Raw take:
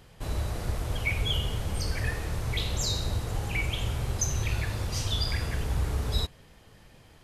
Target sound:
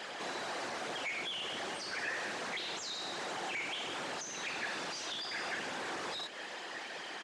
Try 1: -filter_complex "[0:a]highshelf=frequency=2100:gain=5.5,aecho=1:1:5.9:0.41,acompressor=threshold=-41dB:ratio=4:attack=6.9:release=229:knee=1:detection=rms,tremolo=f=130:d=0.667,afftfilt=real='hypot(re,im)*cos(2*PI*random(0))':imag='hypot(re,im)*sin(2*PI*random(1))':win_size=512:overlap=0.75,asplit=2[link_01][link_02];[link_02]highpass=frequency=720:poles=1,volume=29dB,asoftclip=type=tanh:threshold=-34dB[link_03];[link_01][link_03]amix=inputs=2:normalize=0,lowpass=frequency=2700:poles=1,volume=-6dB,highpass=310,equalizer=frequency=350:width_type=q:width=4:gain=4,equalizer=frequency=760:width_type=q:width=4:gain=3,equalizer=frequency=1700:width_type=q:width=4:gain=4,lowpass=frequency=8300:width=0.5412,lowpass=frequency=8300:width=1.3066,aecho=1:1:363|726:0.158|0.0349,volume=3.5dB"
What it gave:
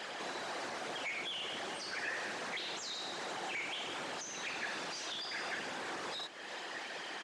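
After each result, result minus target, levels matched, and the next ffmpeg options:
downward compressor: peak gain reduction +6 dB; echo-to-direct +8.5 dB
-filter_complex "[0:a]highshelf=frequency=2100:gain=5.5,aecho=1:1:5.9:0.41,acompressor=threshold=-33dB:ratio=4:attack=6.9:release=229:knee=1:detection=rms,tremolo=f=130:d=0.667,afftfilt=real='hypot(re,im)*cos(2*PI*random(0))':imag='hypot(re,im)*sin(2*PI*random(1))':win_size=512:overlap=0.75,asplit=2[link_01][link_02];[link_02]highpass=frequency=720:poles=1,volume=29dB,asoftclip=type=tanh:threshold=-34dB[link_03];[link_01][link_03]amix=inputs=2:normalize=0,lowpass=frequency=2700:poles=1,volume=-6dB,highpass=310,equalizer=frequency=350:width_type=q:width=4:gain=4,equalizer=frequency=760:width_type=q:width=4:gain=3,equalizer=frequency=1700:width_type=q:width=4:gain=4,lowpass=frequency=8300:width=0.5412,lowpass=frequency=8300:width=1.3066,aecho=1:1:363|726:0.158|0.0349,volume=3.5dB"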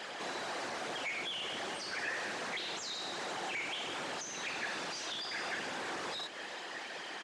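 echo-to-direct +8.5 dB
-filter_complex "[0:a]highshelf=frequency=2100:gain=5.5,aecho=1:1:5.9:0.41,acompressor=threshold=-33dB:ratio=4:attack=6.9:release=229:knee=1:detection=rms,tremolo=f=130:d=0.667,afftfilt=real='hypot(re,im)*cos(2*PI*random(0))':imag='hypot(re,im)*sin(2*PI*random(1))':win_size=512:overlap=0.75,asplit=2[link_01][link_02];[link_02]highpass=frequency=720:poles=1,volume=29dB,asoftclip=type=tanh:threshold=-34dB[link_03];[link_01][link_03]amix=inputs=2:normalize=0,lowpass=frequency=2700:poles=1,volume=-6dB,highpass=310,equalizer=frequency=350:width_type=q:width=4:gain=4,equalizer=frequency=760:width_type=q:width=4:gain=3,equalizer=frequency=1700:width_type=q:width=4:gain=4,lowpass=frequency=8300:width=0.5412,lowpass=frequency=8300:width=1.3066,aecho=1:1:363|726:0.0596|0.0131,volume=3.5dB"

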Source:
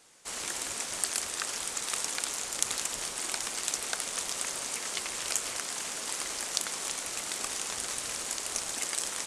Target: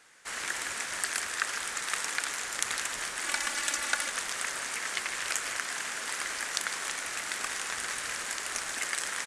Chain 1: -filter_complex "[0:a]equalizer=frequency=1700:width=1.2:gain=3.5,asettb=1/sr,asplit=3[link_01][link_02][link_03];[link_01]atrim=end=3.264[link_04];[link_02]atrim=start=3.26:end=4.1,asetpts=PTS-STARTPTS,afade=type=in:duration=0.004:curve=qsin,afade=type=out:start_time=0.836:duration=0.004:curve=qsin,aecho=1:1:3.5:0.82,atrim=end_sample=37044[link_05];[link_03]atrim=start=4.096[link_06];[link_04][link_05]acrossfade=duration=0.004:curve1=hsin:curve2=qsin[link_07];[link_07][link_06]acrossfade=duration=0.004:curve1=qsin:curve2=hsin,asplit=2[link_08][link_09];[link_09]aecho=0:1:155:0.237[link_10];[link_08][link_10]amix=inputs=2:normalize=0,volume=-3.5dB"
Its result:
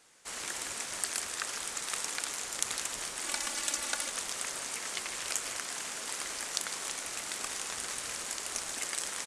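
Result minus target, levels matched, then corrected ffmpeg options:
2,000 Hz band −5.0 dB
-filter_complex "[0:a]equalizer=frequency=1700:width=1.2:gain=13,asettb=1/sr,asplit=3[link_01][link_02][link_03];[link_01]atrim=end=3.264[link_04];[link_02]atrim=start=3.26:end=4.1,asetpts=PTS-STARTPTS,afade=type=in:duration=0.004:curve=qsin,afade=type=out:start_time=0.836:duration=0.004:curve=qsin,aecho=1:1:3.5:0.82,atrim=end_sample=37044[link_05];[link_03]atrim=start=4.096[link_06];[link_04][link_05]acrossfade=duration=0.004:curve1=hsin:curve2=qsin[link_07];[link_07][link_06]acrossfade=duration=0.004:curve1=qsin:curve2=hsin,asplit=2[link_08][link_09];[link_09]aecho=0:1:155:0.237[link_10];[link_08][link_10]amix=inputs=2:normalize=0,volume=-3.5dB"

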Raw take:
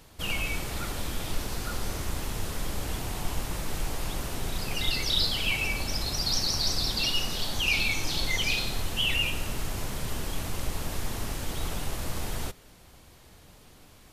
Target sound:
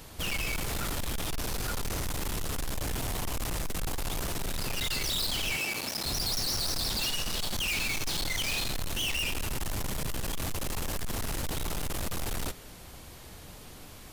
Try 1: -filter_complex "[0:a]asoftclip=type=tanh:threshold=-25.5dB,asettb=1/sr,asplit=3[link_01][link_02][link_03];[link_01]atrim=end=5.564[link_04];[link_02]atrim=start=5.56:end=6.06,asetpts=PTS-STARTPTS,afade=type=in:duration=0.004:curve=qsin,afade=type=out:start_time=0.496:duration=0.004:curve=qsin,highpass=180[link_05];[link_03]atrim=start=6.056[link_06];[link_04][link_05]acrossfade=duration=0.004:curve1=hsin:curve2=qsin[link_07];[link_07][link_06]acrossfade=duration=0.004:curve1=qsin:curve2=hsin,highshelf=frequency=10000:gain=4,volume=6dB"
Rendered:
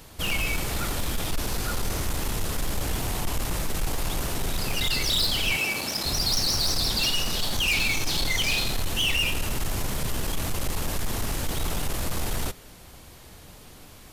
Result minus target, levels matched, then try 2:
soft clipping: distortion −7 dB
-filter_complex "[0:a]asoftclip=type=tanh:threshold=-35dB,asettb=1/sr,asplit=3[link_01][link_02][link_03];[link_01]atrim=end=5.564[link_04];[link_02]atrim=start=5.56:end=6.06,asetpts=PTS-STARTPTS,afade=type=in:duration=0.004:curve=qsin,afade=type=out:start_time=0.496:duration=0.004:curve=qsin,highpass=180[link_05];[link_03]atrim=start=6.056[link_06];[link_04][link_05]acrossfade=duration=0.004:curve1=hsin:curve2=qsin[link_07];[link_07][link_06]acrossfade=duration=0.004:curve1=qsin:curve2=hsin,highshelf=frequency=10000:gain=4,volume=6dB"

